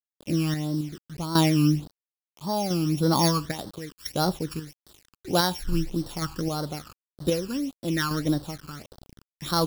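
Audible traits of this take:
a buzz of ramps at a fixed pitch in blocks of 8 samples
sample-and-hold tremolo 3.7 Hz, depth 80%
a quantiser's noise floor 8 bits, dither none
phaser sweep stages 12, 1.7 Hz, lowest notch 620–2,400 Hz

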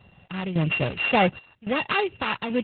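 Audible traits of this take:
a buzz of ramps at a fixed pitch in blocks of 16 samples
sample-and-hold tremolo 3.6 Hz, depth 85%
a quantiser's noise floor 12 bits, dither none
Opus

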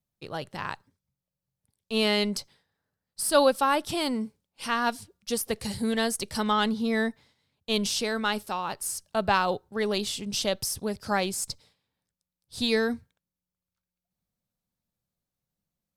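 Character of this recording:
background noise floor −90 dBFS
spectral slope −3.0 dB per octave

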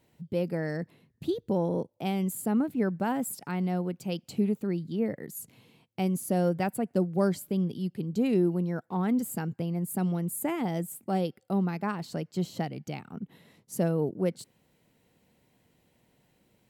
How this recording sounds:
background noise floor −70 dBFS
spectral slope −6.5 dB per octave

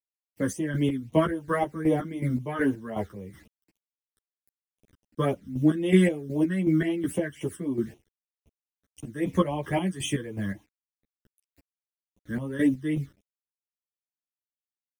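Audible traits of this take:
a quantiser's noise floor 10 bits, dither none
phaser sweep stages 12, 3.8 Hz, lowest notch 750–1,600 Hz
chopped level 2.7 Hz, depth 65%, duty 40%
a shimmering, thickened sound

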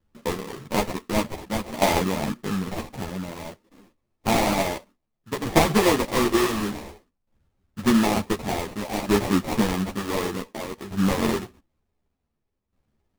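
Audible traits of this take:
a buzz of ramps at a fixed pitch in blocks of 8 samples
tremolo saw down 0.55 Hz, depth 75%
aliases and images of a low sample rate 1,500 Hz, jitter 20%
a shimmering, thickened sound

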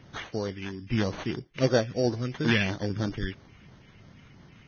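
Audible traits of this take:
phaser sweep stages 4, 3 Hz, lowest notch 750–2,900 Hz
aliases and images of a low sample rate 5,100 Hz, jitter 0%
Ogg Vorbis

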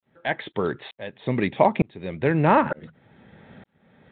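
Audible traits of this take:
tremolo saw up 1.1 Hz, depth 100%
G.726

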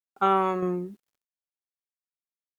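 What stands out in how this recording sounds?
tremolo saw down 1.6 Hz, depth 45%
a quantiser's noise floor 12 bits, dither none
Opus

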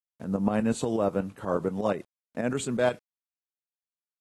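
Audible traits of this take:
a quantiser's noise floor 10 bits, dither none
tremolo saw up 8.3 Hz, depth 65%
AAC

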